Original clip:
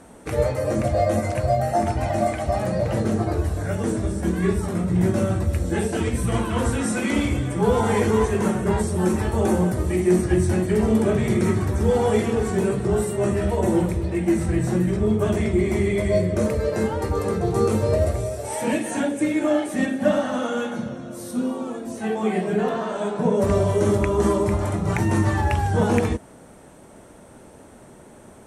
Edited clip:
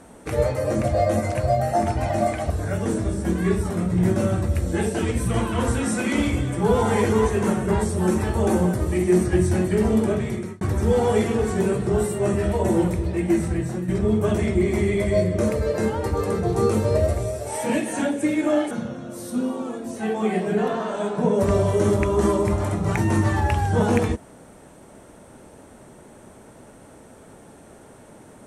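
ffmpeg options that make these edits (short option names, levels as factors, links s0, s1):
-filter_complex "[0:a]asplit=5[s0][s1][s2][s3][s4];[s0]atrim=end=2.502[s5];[s1]atrim=start=3.478:end=11.59,asetpts=PTS-STARTPTS,afade=t=out:st=7.242:d=0.87:c=qsin[s6];[s2]atrim=start=11.59:end=14.86,asetpts=PTS-STARTPTS,afade=t=in:d=0.004:c=hsin,afade=t=out:st=2.75:d=0.52:silence=0.334965[s7];[s3]atrim=start=14.86:end=19.692,asetpts=PTS-STARTPTS,afade=t=in:d=0.004:c=hsin:silence=0.334965[s8];[s4]atrim=start=20.718[s9];[s6][s7][s8]concat=n=3:v=0:a=1[s10];[s5][s10]acrossfade=d=0.004:c1=hsin:c2=hsin[s11];[s11][s9]acrossfade=d=0.004:c1=hsin:c2=hsin"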